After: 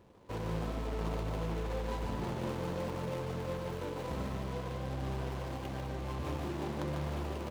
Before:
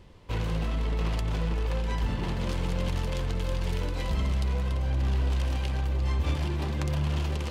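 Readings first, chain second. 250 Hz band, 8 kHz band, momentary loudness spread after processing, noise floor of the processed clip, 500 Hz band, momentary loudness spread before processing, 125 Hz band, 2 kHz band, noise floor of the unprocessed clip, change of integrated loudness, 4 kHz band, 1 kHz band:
-4.5 dB, -7.0 dB, 3 LU, -41 dBFS, -1.0 dB, 3 LU, -10.0 dB, -7.0 dB, -33 dBFS, -8.0 dB, -9.5 dB, -2.0 dB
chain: median filter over 25 samples; high-pass 320 Hz 6 dB/octave; loudspeakers at several distances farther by 50 m -5 dB, 68 m -11 dB

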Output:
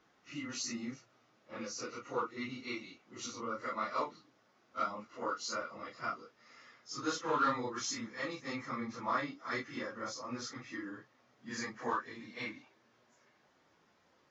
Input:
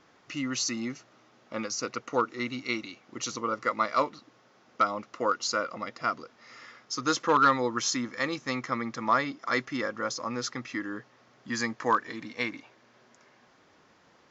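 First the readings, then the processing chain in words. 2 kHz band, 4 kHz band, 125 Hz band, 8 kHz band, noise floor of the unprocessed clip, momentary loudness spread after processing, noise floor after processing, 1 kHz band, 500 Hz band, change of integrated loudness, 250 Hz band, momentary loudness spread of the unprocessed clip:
-9.0 dB, -9.0 dB, -8.5 dB, no reading, -62 dBFS, 12 LU, -71 dBFS, -9.5 dB, -9.0 dB, -9.0 dB, -8.5 dB, 12 LU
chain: phase randomisation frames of 100 ms; trim -9 dB

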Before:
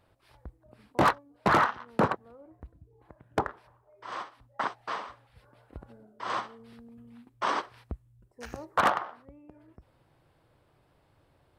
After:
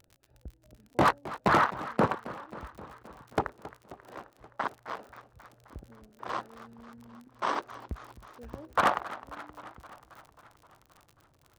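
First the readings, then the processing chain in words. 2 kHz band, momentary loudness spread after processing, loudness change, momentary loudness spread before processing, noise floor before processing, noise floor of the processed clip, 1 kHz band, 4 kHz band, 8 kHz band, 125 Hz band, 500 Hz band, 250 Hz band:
-1.0 dB, 23 LU, -0.5 dB, 19 LU, -67 dBFS, -65 dBFS, -0.5 dB, -1.5 dB, -0.5 dB, 0.0 dB, 0.0 dB, 0.0 dB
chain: local Wiener filter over 41 samples; crackle 41 per s -41 dBFS; modulated delay 265 ms, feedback 68%, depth 178 cents, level -16 dB

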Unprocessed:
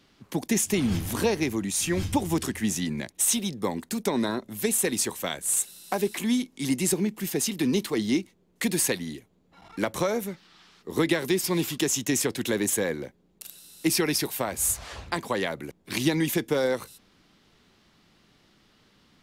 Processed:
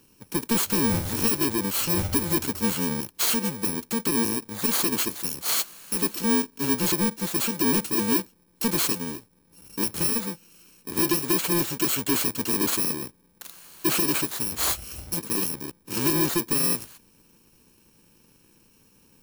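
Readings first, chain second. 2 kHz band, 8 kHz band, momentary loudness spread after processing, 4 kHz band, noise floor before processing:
0.0 dB, +0.5 dB, 9 LU, +2.5 dB, -64 dBFS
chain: bit-reversed sample order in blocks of 64 samples; peaking EQ 320 Hz +4 dB 1 oct; saturation -23.5 dBFS, distortion -10 dB; upward expansion 1.5:1, over -33 dBFS; trim +6 dB

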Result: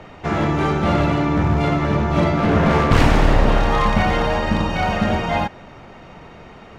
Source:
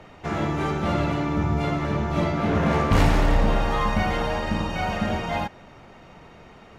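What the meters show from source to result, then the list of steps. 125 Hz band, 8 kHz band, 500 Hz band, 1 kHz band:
+5.5 dB, +3.5 dB, +6.0 dB, +6.0 dB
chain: one-sided wavefolder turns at -17.5 dBFS; treble shelf 7.7 kHz -8.5 dB; trim +6.5 dB

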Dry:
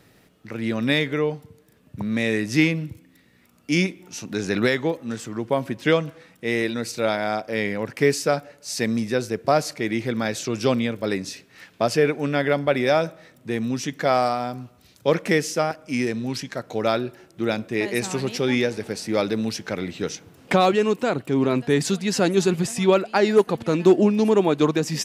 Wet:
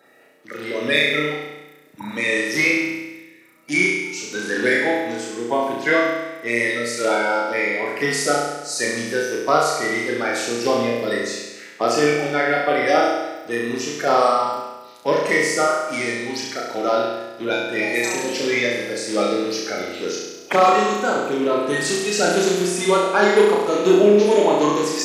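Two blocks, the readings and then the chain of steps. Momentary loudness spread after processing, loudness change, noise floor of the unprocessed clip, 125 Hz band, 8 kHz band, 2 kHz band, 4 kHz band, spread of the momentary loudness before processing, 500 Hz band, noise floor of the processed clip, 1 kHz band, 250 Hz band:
11 LU, +3.0 dB, -56 dBFS, -6.5 dB, +5.5 dB, +7.0 dB, +4.0 dB, 11 LU, +3.0 dB, -45 dBFS, +6.0 dB, -1.0 dB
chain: coarse spectral quantiser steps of 30 dB; high-pass 350 Hz 12 dB/octave; flutter echo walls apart 5.8 m, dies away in 1.1 s; trim +1.5 dB

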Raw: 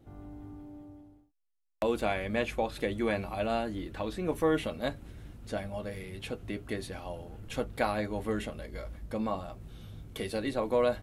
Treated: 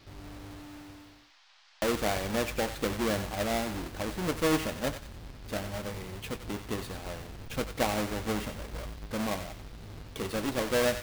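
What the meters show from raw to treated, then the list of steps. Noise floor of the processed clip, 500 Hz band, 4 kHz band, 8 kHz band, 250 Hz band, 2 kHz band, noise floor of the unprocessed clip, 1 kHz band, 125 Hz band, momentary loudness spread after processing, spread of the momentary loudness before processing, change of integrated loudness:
-60 dBFS, -0.5 dB, +6.0 dB, +12.0 dB, +1.0 dB, +2.5 dB, -68 dBFS, +0.5 dB, +2.0 dB, 17 LU, 17 LU, +1.0 dB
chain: square wave that keeps the level; thinning echo 92 ms, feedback 41%, high-pass 1.1 kHz, level -8 dB; band noise 730–5100 Hz -58 dBFS; trim -3.5 dB

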